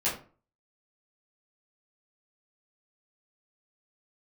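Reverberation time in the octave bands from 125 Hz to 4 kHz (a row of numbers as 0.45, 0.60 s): 0.45, 0.45, 0.40, 0.40, 0.30, 0.25 s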